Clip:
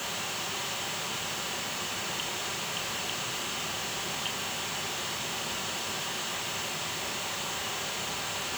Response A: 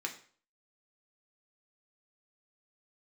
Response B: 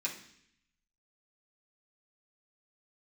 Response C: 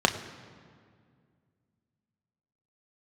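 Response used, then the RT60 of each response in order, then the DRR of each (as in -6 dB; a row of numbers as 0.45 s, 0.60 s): C; 0.45 s, 0.65 s, 2.1 s; 1.0 dB, -5.5 dB, 4.5 dB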